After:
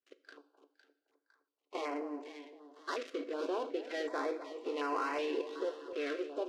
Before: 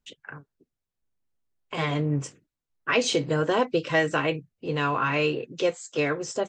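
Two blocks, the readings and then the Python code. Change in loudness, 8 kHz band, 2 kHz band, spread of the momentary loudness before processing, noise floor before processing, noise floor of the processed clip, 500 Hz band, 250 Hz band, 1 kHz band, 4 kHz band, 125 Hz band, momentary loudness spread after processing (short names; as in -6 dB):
-12.0 dB, -21.0 dB, -15.5 dB, 13 LU, under -85 dBFS, under -85 dBFS, -10.5 dB, -11.5 dB, -10.0 dB, -16.0 dB, under -40 dB, 13 LU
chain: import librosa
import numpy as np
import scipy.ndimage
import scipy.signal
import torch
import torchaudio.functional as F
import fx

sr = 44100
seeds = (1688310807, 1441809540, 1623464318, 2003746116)

p1 = fx.dead_time(x, sr, dead_ms=0.15)
p2 = scipy.signal.sosfilt(scipy.signal.butter(2, 4500.0, 'lowpass', fs=sr, output='sos'), p1)
p3 = fx.high_shelf(p2, sr, hz=2800.0, db=-5.0)
p4 = fx.level_steps(p3, sr, step_db=17)
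p5 = fx.brickwall_highpass(p4, sr, low_hz=260.0)
p6 = p5 + fx.echo_split(p5, sr, split_hz=1100.0, low_ms=258, high_ms=507, feedback_pct=52, wet_db=-10, dry=0)
p7 = fx.rev_double_slope(p6, sr, seeds[0], early_s=0.59, late_s=4.6, knee_db=-22, drr_db=11.5)
y = fx.filter_held_notch(p7, sr, hz=2.7, low_hz=890.0, high_hz=3500.0)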